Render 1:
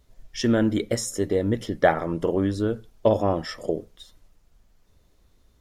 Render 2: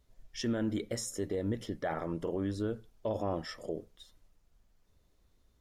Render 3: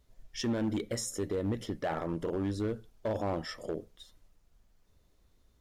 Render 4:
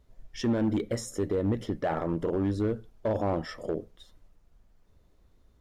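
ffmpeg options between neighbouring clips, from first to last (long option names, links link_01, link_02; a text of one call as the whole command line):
ffmpeg -i in.wav -af "alimiter=limit=-16dB:level=0:latency=1:release=38,volume=-8.5dB" out.wav
ffmpeg -i in.wav -af "asoftclip=type=hard:threshold=-28.5dB,volume=2dB" out.wav
ffmpeg -i in.wav -af "highshelf=frequency=2400:gain=-9,volume=5dB" out.wav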